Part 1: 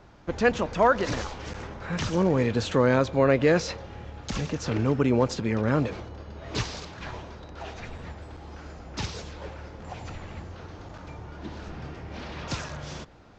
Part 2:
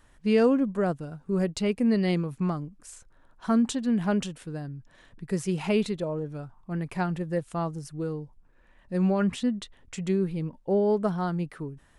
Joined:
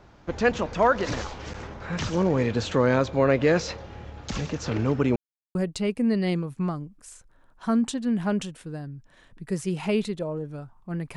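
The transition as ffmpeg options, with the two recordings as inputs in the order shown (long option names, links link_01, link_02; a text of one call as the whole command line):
ffmpeg -i cue0.wav -i cue1.wav -filter_complex "[0:a]apad=whole_dur=11.16,atrim=end=11.16,asplit=2[link_01][link_02];[link_01]atrim=end=5.16,asetpts=PTS-STARTPTS,afade=type=out:start_time=5.156:duration=0.004:curve=hsin[link_03];[link_02]atrim=start=5.16:end=5.55,asetpts=PTS-STARTPTS,volume=0[link_04];[1:a]atrim=start=1.36:end=6.97,asetpts=PTS-STARTPTS,afade=type=in:duration=0.004:curve=hsin[link_05];[link_03][link_04][link_05]concat=n=3:v=0:a=1" out.wav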